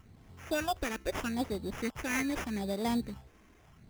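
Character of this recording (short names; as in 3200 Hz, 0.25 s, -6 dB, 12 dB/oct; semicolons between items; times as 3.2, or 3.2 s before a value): phasing stages 4, 0.8 Hz, lowest notch 120–3100 Hz; aliases and images of a low sample rate 4200 Hz, jitter 0%; Nellymoser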